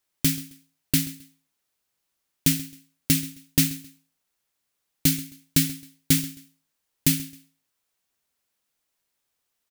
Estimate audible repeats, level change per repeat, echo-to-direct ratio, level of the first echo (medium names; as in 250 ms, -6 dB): 2, -11.0 dB, -18.5 dB, -19.0 dB